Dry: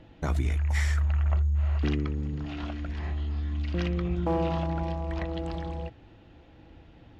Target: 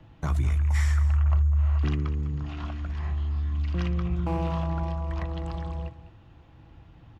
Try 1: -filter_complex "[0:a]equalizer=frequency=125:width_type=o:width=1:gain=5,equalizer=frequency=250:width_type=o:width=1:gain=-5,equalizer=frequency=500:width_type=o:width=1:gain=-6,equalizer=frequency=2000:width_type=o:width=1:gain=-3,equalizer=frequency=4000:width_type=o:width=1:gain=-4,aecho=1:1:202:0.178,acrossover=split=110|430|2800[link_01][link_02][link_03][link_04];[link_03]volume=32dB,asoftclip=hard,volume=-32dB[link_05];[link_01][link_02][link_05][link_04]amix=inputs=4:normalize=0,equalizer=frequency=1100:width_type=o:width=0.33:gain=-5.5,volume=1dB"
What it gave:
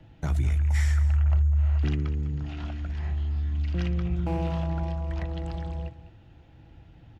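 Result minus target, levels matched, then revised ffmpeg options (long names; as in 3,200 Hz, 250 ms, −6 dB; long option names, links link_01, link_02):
1,000 Hz band −3.5 dB
-filter_complex "[0:a]equalizer=frequency=125:width_type=o:width=1:gain=5,equalizer=frequency=250:width_type=o:width=1:gain=-5,equalizer=frequency=500:width_type=o:width=1:gain=-6,equalizer=frequency=2000:width_type=o:width=1:gain=-3,equalizer=frequency=4000:width_type=o:width=1:gain=-4,aecho=1:1:202:0.178,acrossover=split=110|430|2800[link_01][link_02][link_03][link_04];[link_03]volume=32dB,asoftclip=hard,volume=-32dB[link_05];[link_01][link_02][link_05][link_04]amix=inputs=4:normalize=0,equalizer=frequency=1100:width_type=o:width=0.33:gain=6,volume=1dB"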